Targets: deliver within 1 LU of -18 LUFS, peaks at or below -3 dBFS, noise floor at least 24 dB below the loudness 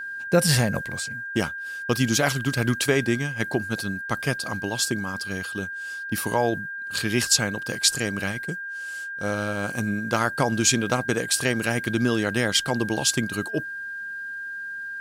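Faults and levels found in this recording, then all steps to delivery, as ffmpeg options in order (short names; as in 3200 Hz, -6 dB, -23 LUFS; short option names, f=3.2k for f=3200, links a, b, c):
steady tone 1600 Hz; tone level -31 dBFS; loudness -25.0 LUFS; peak -5.0 dBFS; loudness target -18.0 LUFS
-> -af "bandreject=f=1.6k:w=30"
-af "volume=7dB,alimiter=limit=-3dB:level=0:latency=1"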